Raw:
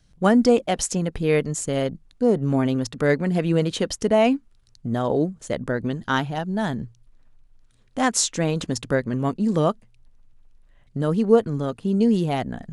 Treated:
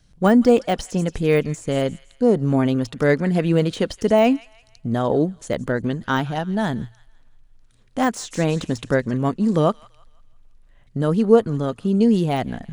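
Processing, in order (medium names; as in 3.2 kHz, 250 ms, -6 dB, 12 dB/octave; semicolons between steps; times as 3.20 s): feedback echo behind a high-pass 167 ms, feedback 40%, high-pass 1.5 kHz, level -19 dB; de-esser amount 75%; trim +2.5 dB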